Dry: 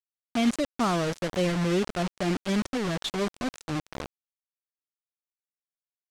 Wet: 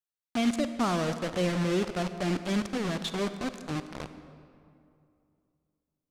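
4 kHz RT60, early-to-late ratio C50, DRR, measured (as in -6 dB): 1.5 s, 10.5 dB, 10.0 dB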